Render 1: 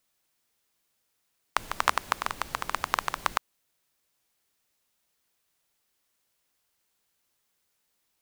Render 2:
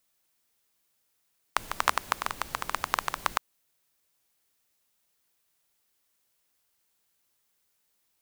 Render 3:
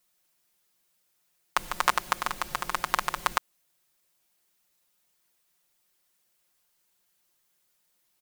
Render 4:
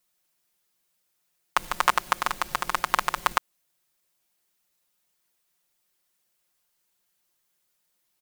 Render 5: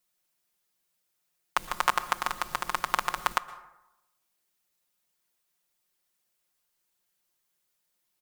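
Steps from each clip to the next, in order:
high-shelf EQ 8,700 Hz +4.5 dB; level −1 dB
comb filter 5.6 ms, depth 70%
leveller curve on the samples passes 1
dense smooth reverb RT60 0.93 s, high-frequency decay 0.45×, pre-delay 105 ms, DRR 16 dB; level −3.5 dB

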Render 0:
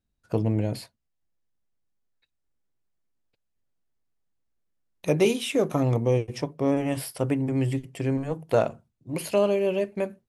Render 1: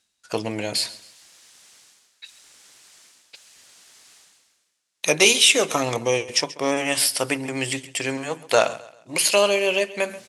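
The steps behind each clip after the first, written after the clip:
meter weighting curve ITU-R 468
reversed playback
upward compression, threshold −38 dBFS
reversed playback
repeating echo 134 ms, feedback 35%, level −18.5 dB
level +8 dB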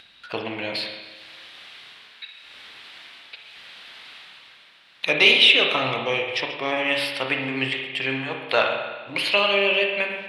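drawn EQ curve 480 Hz 0 dB, 2,600 Hz +8 dB, 3,800 Hz +7 dB, 6,700 Hz −21 dB, 11,000 Hz −15 dB
upward compression, threshold −28 dBFS
spring reverb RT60 1.3 s, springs 30/53 ms, chirp 30 ms, DRR 2 dB
level −5.5 dB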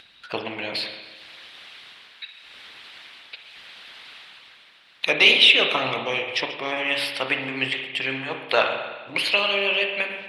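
harmonic and percussive parts rebalanced percussive +7 dB
level −4.5 dB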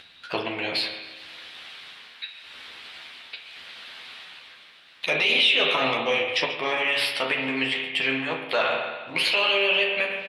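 brickwall limiter −13 dBFS, peak gain reduction 11.5 dB
on a send: ambience of single reflections 12 ms −4 dB, 38 ms −10.5 dB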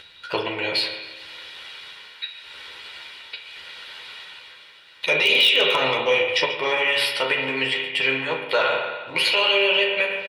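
comb filter 2.1 ms, depth 51%
in parallel at −12 dB: wrap-around overflow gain 9.5 dB

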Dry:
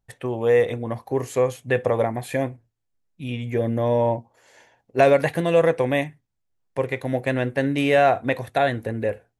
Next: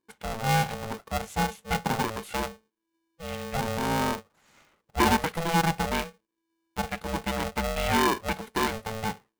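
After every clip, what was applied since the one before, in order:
ring modulator with a square carrier 330 Hz
level −6.5 dB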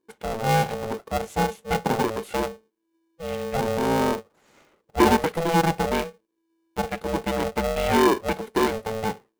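parametric band 410 Hz +9.5 dB 1.5 octaves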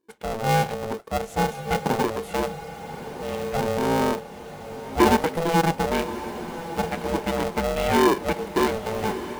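feedback delay with all-pass diffusion 1,163 ms, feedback 61%, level −12 dB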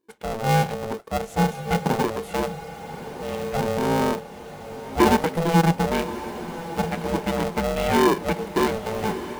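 dynamic equaliser 170 Hz, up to +7 dB, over −43 dBFS, Q 4.5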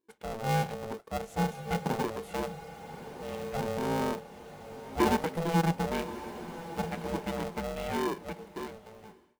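fade-out on the ending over 2.31 s
level −8.5 dB

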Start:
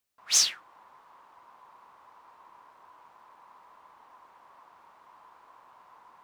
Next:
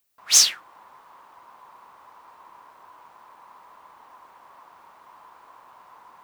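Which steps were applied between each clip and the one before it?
high-shelf EQ 11,000 Hz +8.5 dB
level +5.5 dB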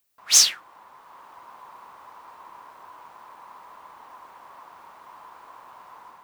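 automatic gain control gain up to 3.5 dB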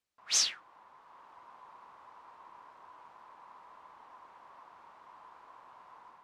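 high-frequency loss of the air 71 metres
level −8 dB

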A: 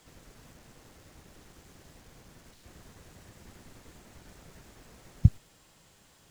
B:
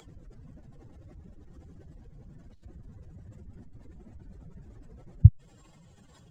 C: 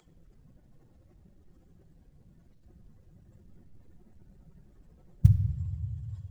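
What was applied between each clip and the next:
expanding power law on the bin magnitudes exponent 2.3; upward compression, threshold −60 dBFS; level +5.5 dB
mu-law and A-law mismatch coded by A; rectangular room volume 2,300 cubic metres, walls mixed, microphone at 0.96 metres; level −3 dB

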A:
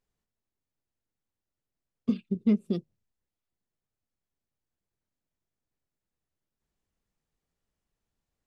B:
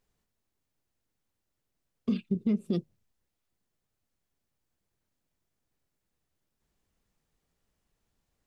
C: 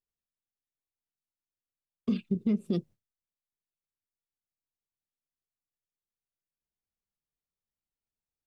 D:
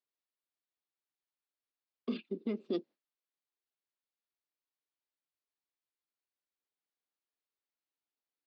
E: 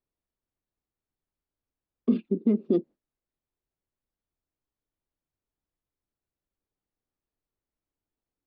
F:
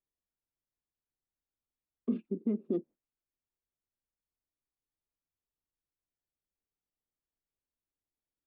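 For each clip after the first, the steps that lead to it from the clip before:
brickwall limiter −25.5 dBFS, peak gain reduction 11.5 dB; level +6 dB
noise gate with hold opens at −59 dBFS
elliptic band-pass filter 280–4,500 Hz
spectral tilt −5 dB per octave; level +3 dB
low-pass filter 2,600 Hz; level −8.5 dB

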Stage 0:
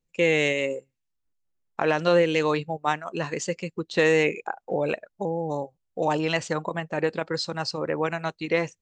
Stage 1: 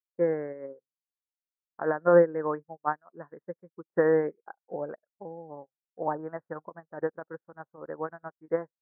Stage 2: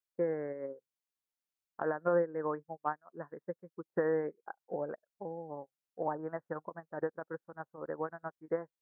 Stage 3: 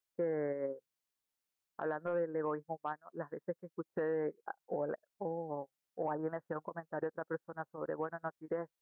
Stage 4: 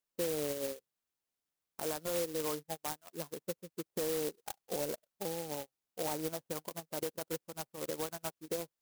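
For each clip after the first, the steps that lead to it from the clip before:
Butterworth low-pass 1,700 Hz 72 dB per octave; low-shelf EQ 110 Hz −12 dB; expander for the loud parts 2.5 to 1, over −44 dBFS; level +3.5 dB
downward compressor 2 to 1, threshold −34 dBFS, peak gain reduction 11 dB
soft clipping −18.5 dBFS, distortion −25 dB; brickwall limiter −30.5 dBFS, peak gain reduction 10 dB; level +3 dB
converter with an unsteady clock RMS 0.15 ms

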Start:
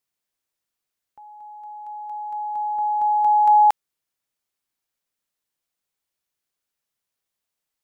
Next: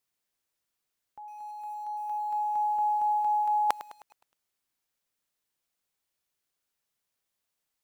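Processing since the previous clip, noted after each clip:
reversed playback
downward compressor 16 to 1, threshold −23 dBFS, peak gain reduction 11.5 dB
reversed playback
feedback echo at a low word length 104 ms, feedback 55%, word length 8 bits, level −14.5 dB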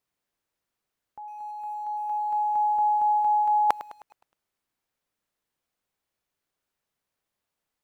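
high-shelf EQ 2,600 Hz −9.5 dB
level +5 dB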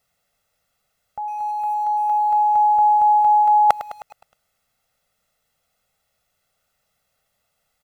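in parallel at +3 dB: downward compressor, threshold −32 dBFS, peak gain reduction 15 dB
on the sum: comb filter 1.5 ms, depth 84%
level +2.5 dB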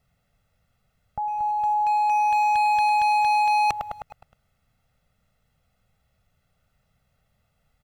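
bass and treble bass +15 dB, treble −8 dB
gain into a clipping stage and back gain 19 dB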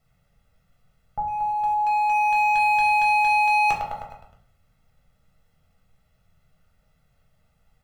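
rectangular room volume 61 cubic metres, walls mixed, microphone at 0.72 metres
level −1 dB

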